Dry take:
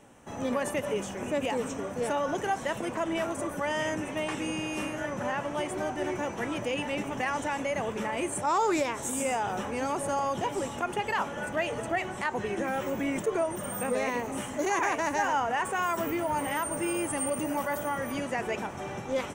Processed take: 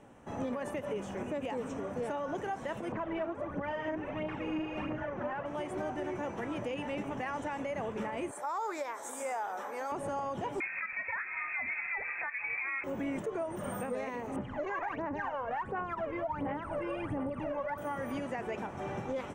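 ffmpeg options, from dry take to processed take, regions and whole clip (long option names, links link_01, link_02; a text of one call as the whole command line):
ffmpeg -i in.wav -filter_complex "[0:a]asettb=1/sr,asplit=3[link_01][link_02][link_03];[link_01]atrim=end=2.924[link_04];[link_02]atrim=start=2.92:end=5.46,asetpts=PTS-STARTPTS,afade=type=in:duration=0.004:curve=qsin,afade=type=out:start_time=2.536:duration=0.004:curve=qsin,lowpass=2700,aphaser=in_gain=1:out_gain=1:delay=3.4:decay=0.55:speed=1.5:type=triangular[link_05];[link_03]atrim=start=5.456[link_06];[link_04][link_05]acrossfade=duration=0.004:curve1=hsin:curve2=qsin[link_07];[link_07][link_06]acrossfade=duration=0.004:curve1=qsin:curve2=hsin,asettb=1/sr,asplit=3[link_08][link_09][link_10];[link_08]atrim=end=8.314[link_11];[link_09]atrim=start=8.31:end=9.92,asetpts=PTS-STARTPTS,afade=type=in:duration=0.004:curve=qsin,afade=type=out:start_time=1.606:duration=0.004:curve=qsin,highpass=640,equalizer=frequency=2800:width=3.7:gain=-11,aeval=exprs='val(0)+0.00141*sin(2*PI*13000*n/s)':channel_layout=same[link_12];[link_10]atrim=start=9.916[link_13];[link_11][link_12]acrossfade=duration=0.004:curve1=hsin:curve2=qsin[link_14];[link_14][link_13]acrossfade=duration=0.004:curve1=qsin:curve2=hsin,asettb=1/sr,asplit=3[link_15][link_16][link_17];[link_15]atrim=end=10.604[link_18];[link_16]atrim=start=10.6:end=12.84,asetpts=PTS-STARTPTS,afade=type=in:duration=0.004:curve=qsin,afade=type=out:start_time=2.236:duration=0.004:curve=qsin,lowpass=frequency=2300:width_type=q:width=0.5098,lowpass=frequency=2300:width_type=q:width=0.6013,lowpass=frequency=2300:width_type=q:width=0.9,lowpass=frequency=2300:width_type=q:width=2.563,afreqshift=-2700,equalizer=frequency=2100:width=1.1:gain=8[link_19];[link_17]atrim=start=12.836[link_20];[link_18][link_19]acrossfade=duration=0.004:curve1=hsin:curve2=qsin[link_21];[link_21][link_20]acrossfade=duration=0.004:curve1=qsin:curve2=hsin,asettb=1/sr,asplit=3[link_22][link_23][link_24];[link_22]atrim=end=14.364[link_25];[link_23]atrim=start=14.36:end=17.78,asetpts=PTS-STARTPTS,afade=type=in:duration=0.004:curve=qsin,afade=type=out:start_time=3.416:duration=0.004:curve=qsin,lowpass=2400,aphaser=in_gain=1:out_gain=1:delay=1.9:decay=0.77:speed=1.4:type=sinusoidal[link_26];[link_24]atrim=start=17.776[link_27];[link_25][link_26]acrossfade=duration=0.004:curve1=hsin:curve2=qsin[link_28];[link_28][link_27]acrossfade=duration=0.004:curve1=qsin:curve2=hsin,highshelf=frequency=3200:gain=-12,alimiter=level_in=3.5dB:limit=-24dB:level=0:latency=1:release=252,volume=-3.5dB" out.wav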